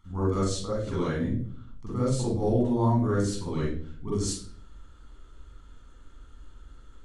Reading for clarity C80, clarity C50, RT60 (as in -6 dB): 4.0 dB, -2.5 dB, 0.50 s